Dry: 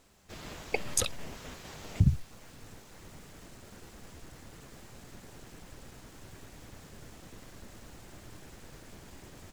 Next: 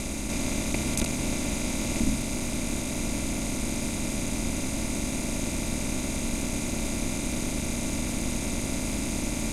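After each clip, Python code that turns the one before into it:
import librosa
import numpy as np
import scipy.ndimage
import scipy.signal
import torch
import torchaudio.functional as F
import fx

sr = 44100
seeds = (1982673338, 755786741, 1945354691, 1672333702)

y = fx.bin_compress(x, sr, power=0.2)
y = y * np.sin(2.0 * np.pi * 130.0 * np.arange(len(y)) / sr)
y = y * 10.0 ** (-2.5 / 20.0)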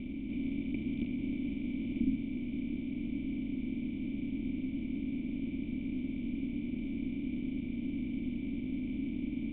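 y = fx.formant_cascade(x, sr, vowel='i')
y = fx.peak_eq(y, sr, hz=1700.0, db=-3.0, octaves=0.3)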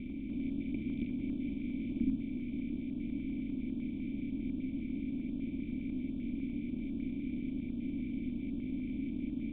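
y = fx.notch(x, sr, hz=2900.0, q=11.0)
y = fx.filter_held_notch(y, sr, hz=10.0, low_hz=830.0, high_hz=2100.0)
y = y * 10.0 ** (-1.0 / 20.0)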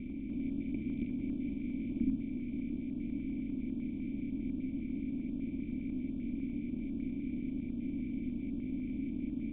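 y = scipy.signal.sosfilt(scipy.signal.butter(2, 2600.0, 'lowpass', fs=sr, output='sos'), x)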